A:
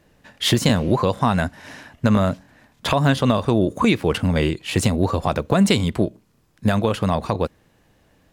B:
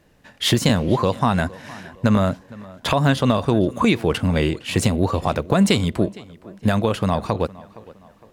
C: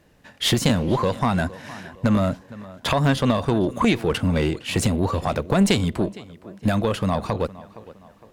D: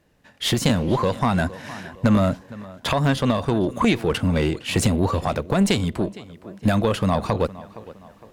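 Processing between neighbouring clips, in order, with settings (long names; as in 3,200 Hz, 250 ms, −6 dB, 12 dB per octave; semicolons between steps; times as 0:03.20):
tape delay 462 ms, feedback 45%, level −19 dB, low-pass 3,500 Hz
one-sided soft clipper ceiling −11 dBFS
automatic gain control gain up to 9 dB; level −5.5 dB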